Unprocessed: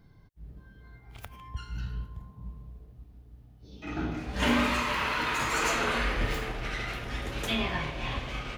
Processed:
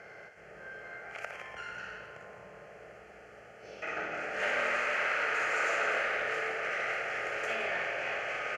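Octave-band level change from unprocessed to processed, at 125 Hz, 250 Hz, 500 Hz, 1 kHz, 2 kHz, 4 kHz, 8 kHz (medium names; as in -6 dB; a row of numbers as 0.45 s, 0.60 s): -21.5 dB, -18.0 dB, +0.5 dB, -3.0 dB, +2.0 dB, -8.5 dB, -9.0 dB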